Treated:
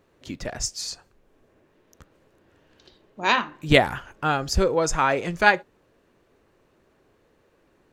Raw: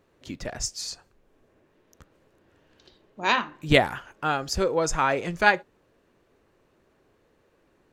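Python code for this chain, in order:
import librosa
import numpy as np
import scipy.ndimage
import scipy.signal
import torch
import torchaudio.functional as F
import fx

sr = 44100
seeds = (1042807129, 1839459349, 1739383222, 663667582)

y = fx.low_shelf(x, sr, hz=130.0, db=9.0, at=(3.87, 4.75))
y = y * librosa.db_to_amplitude(2.0)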